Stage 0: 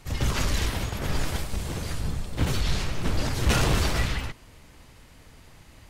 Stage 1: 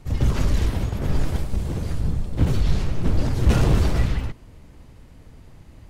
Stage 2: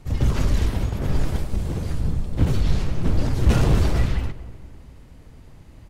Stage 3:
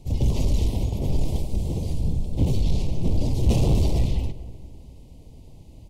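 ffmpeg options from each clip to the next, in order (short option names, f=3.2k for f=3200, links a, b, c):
-af "tiltshelf=f=740:g=6.5"
-filter_complex "[0:a]asplit=2[a][b];[b]adelay=234,lowpass=f=2k:p=1,volume=-17dB,asplit=2[c][d];[d]adelay=234,lowpass=f=2k:p=1,volume=0.51,asplit=2[e][f];[f]adelay=234,lowpass=f=2k:p=1,volume=0.51,asplit=2[g][h];[h]adelay=234,lowpass=f=2k:p=1,volume=0.51[i];[a][c][e][g][i]amix=inputs=5:normalize=0"
-af "asuperstop=centerf=1500:order=4:qfactor=0.78,asoftclip=type=tanh:threshold=-11dB"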